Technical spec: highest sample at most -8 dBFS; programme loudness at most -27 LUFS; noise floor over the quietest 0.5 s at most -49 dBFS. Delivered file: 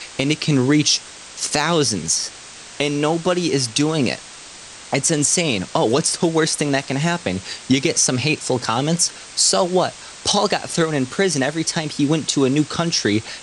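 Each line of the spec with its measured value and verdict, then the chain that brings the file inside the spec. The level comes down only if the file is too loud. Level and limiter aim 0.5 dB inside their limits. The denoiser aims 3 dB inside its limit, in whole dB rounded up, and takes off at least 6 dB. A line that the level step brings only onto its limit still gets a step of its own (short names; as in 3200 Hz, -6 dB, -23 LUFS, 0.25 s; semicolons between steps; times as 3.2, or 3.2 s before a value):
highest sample -3.5 dBFS: fail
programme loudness -19.0 LUFS: fail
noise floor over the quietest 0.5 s -39 dBFS: fail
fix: denoiser 6 dB, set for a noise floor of -39 dBFS; gain -8.5 dB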